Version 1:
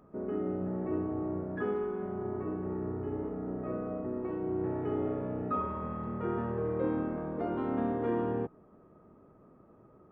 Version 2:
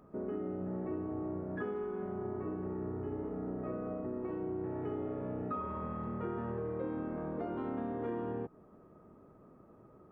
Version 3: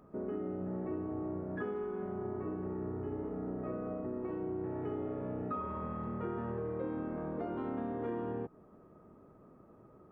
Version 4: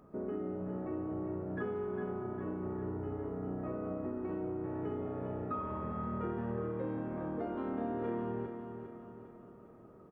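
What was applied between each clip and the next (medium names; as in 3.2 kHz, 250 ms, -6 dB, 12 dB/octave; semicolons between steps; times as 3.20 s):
compression 4:1, threshold -35 dBFS, peak gain reduction 8 dB
no audible change
feedback delay 403 ms, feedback 50%, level -8 dB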